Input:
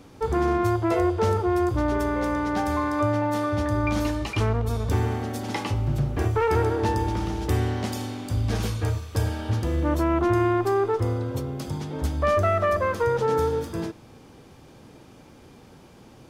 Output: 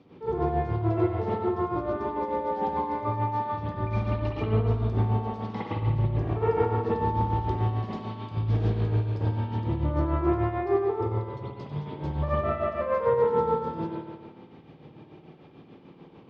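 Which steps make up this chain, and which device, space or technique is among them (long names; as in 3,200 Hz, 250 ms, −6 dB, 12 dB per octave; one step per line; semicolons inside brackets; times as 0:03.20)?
dynamic equaliser 2,700 Hz, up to −7 dB, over −45 dBFS, Q 1
combo amplifier with spring reverb and tremolo (spring reverb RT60 1.5 s, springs 55 ms, chirp 45 ms, DRR −8 dB; amplitude tremolo 6.8 Hz, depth 54%; loudspeaker in its box 97–4,200 Hz, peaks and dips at 160 Hz +6 dB, 370 Hz +6 dB, 1,500 Hz −6 dB)
level −8.5 dB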